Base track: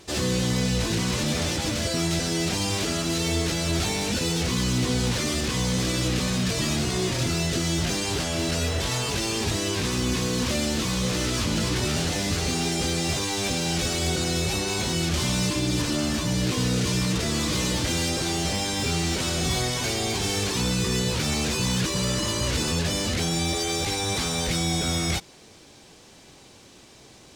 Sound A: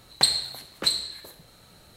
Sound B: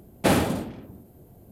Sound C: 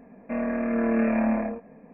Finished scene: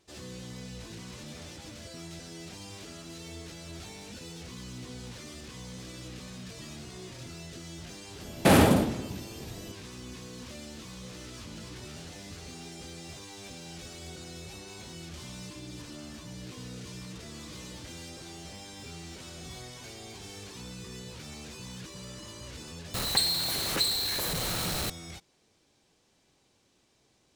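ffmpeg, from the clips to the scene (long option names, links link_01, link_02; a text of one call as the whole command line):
ffmpeg -i bed.wav -i cue0.wav -i cue1.wav -filter_complex "[0:a]volume=-18.5dB[link_01];[2:a]alimiter=level_in=13.5dB:limit=-1dB:release=50:level=0:latency=1[link_02];[1:a]aeval=exprs='val(0)+0.5*0.133*sgn(val(0))':channel_layout=same[link_03];[link_02]atrim=end=1.51,asetpts=PTS-STARTPTS,volume=-8dB,afade=type=in:duration=0.004:curve=hsin,afade=type=out:start_time=1.506:duration=0.004:curve=hsin,adelay=8210[link_04];[link_03]atrim=end=1.96,asetpts=PTS-STARTPTS,volume=-8.5dB,afade=type=in:duration=0.004:curve=hsin,afade=type=out:start_time=1.956:duration=0.004:curve=hsin,adelay=22940[link_05];[link_01][link_04][link_05]amix=inputs=3:normalize=0" out.wav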